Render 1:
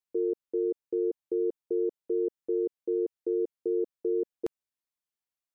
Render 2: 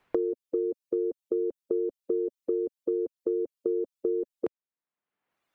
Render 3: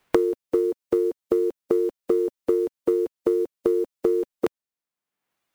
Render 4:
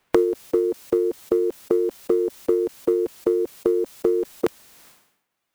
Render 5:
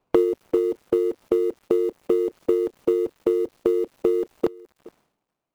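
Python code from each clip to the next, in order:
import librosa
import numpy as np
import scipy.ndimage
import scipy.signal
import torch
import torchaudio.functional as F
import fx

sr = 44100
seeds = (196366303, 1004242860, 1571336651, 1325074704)

y1 = fx.dereverb_blind(x, sr, rt60_s=1.5)
y1 = fx.band_squash(y1, sr, depth_pct=100)
y1 = y1 * 10.0 ** (1.5 / 20.0)
y2 = fx.envelope_flatten(y1, sr, power=0.6)
y2 = fx.upward_expand(y2, sr, threshold_db=-36.0, expansion=1.5)
y2 = y2 * 10.0 ** (8.5 / 20.0)
y3 = fx.sustainer(y2, sr, db_per_s=77.0)
y3 = y3 * 10.0 ** (1.0 / 20.0)
y4 = scipy.signal.medfilt(y3, 25)
y4 = y4 + 10.0 ** (-22.0 / 20.0) * np.pad(y4, (int(421 * sr / 1000.0), 0))[:len(y4)]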